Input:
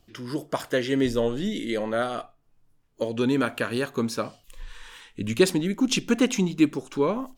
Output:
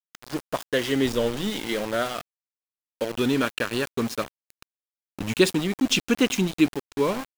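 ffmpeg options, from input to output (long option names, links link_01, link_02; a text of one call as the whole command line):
ffmpeg -i in.wav -af "adynamicequalizer=threshold=0.00562:dfrequency=3000:dqfactor=1.3:tfrequency=3000:tqfactor=1.3:attack=5:release=100:ratio=0.375:range=2.5:mode=boostabove:tftype=bell,aeval=exprs='val(0)*gte(abs(val(0)),0.0355)':channel_layout=same" out.wav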